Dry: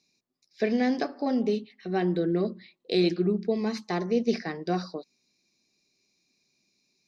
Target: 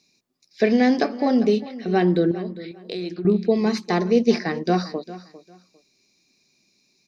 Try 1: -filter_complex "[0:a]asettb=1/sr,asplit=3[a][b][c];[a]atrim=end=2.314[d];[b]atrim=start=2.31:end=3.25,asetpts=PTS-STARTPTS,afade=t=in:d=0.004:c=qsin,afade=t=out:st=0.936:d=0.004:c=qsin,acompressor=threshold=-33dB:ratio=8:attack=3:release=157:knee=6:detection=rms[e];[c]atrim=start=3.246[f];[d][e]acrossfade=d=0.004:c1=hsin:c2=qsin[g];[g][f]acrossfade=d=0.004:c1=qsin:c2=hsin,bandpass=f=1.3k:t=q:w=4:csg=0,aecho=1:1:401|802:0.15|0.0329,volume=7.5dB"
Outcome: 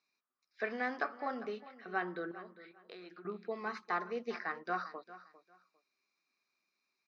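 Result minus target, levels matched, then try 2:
1000 Hz band +7.5 dB
-filter_complex "[0:a]asettb=1/sr,asplit=3[a][b][c];[a]atrim=end=2.314[d];[b]atrim=start=2.31:end=3.25,asetpts=PTS-STARTPTS,afade=t=in:d=0.004:c=qsin,afade=t=out:st=0.936:d=0.004:c=qsin,acompressor=threshold=-33dB:ratio=8:attack=3:release=157:knee=6:detection=rms[e];[c]atrim=start=3.246[f];[d][e]acrossfade=d=0.004:c1=hsin:c2=qsin[g];[g][f]acrossfade=d=0.004:c1=qsin:c2=hsin,aecho=1:1:401|802:0.15|0.0329,volume=7.5dB"

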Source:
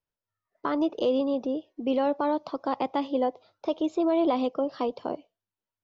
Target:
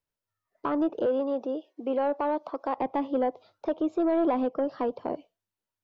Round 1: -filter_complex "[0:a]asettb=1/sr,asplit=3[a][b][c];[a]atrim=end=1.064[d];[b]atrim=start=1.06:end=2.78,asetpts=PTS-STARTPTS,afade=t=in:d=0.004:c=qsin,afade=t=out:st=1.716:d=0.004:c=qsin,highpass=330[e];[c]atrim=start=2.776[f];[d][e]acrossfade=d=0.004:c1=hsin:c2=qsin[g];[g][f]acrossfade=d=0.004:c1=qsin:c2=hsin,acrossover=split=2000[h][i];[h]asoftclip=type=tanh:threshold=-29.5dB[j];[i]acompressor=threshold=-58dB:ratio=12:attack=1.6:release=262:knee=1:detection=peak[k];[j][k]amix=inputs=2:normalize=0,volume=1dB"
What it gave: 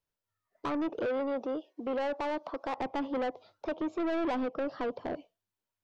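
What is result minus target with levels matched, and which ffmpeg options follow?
soft clip: distortion +12 dB
-filter_complex "[0:a]asettb=1/sr,asplit=3[a][b][c];[a]atrim=end=1.064[d];[b]atrim=start=1.06:end=2.78,asetpts=PTS-STARTPTS,afade=t=in:d=0.004:c=qsin,afade=t=out:st=1.716:d=0.004:c=qsin,highpass=330[e];[c]atrim=start=2.776[f];[d][e]acrossfade=d=0.004:c1=hsin:c2=qsin[g];[g][f]acrossfade=d=0.004:c1=qsin:c2=hsin,acrossover=split=2000[h][i];[h]asoftclip=type=tanh:threshold=-18dB[j];[i]acompressor=threshold=-58dB:ratio=12:attack=1.6:release=262:knee=1:detection=peak[k];[j][k]amix=inputs=2:normalize=0,volume=1dB"

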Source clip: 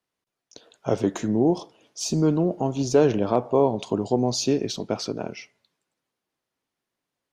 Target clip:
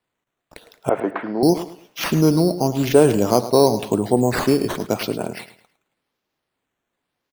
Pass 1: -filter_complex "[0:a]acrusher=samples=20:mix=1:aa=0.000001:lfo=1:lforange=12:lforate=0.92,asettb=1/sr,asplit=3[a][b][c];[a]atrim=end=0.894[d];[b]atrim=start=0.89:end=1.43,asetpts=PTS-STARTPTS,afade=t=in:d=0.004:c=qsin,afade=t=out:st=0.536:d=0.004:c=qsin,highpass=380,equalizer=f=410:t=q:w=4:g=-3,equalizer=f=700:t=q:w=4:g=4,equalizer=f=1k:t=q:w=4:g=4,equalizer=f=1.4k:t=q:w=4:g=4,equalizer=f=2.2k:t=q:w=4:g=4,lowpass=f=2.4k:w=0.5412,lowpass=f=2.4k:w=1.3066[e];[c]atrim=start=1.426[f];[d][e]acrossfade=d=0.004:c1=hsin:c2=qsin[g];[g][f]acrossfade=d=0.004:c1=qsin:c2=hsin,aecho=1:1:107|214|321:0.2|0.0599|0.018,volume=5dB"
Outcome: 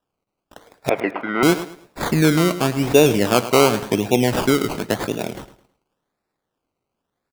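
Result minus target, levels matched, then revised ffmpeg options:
decimation with a swept rate: distortion +8 dB
-filter_complex "[0:a]acrusher=samples=7:mix=1:aa=0.000001:lfo=1:lforange=4.2:lforate=0.92,asettb=1/sr,asplit=3[a][b][c];[a]atrim=end=0.894[d];[b]atrim=start=0.89:end=1.43,asetpts=PTS-STARTPTS,afade=t=in:d=0.004:c=qsin,afade=t=out:st=0.536:d=0.004:c=qsin,highpass=380,equalizer=f=410:t=q:w=4:g=-3,equalizer=f=700:t=q:w=4:g=4,equalizer=f=1k:t=q:w=4:g=4,equalizer=f=1.4k:t=q:w=4:g=4,equalizer=f=2.2k:t=q:w=4:g=4,lowpass=f=2.4k:w=0.5412,lowpass=f=2.4k:w=1.3066[e];[c]atrim=start=1.426[f];[d][e]acrossfade=d=0.004:c1=hsin:c2=qsin[g];[g][f]acrossfade=d=0.004:c1=qsin:c2=hsin,aecho=1:1:107|214|321:0.2|0.0599|0.018,volume=5dB"

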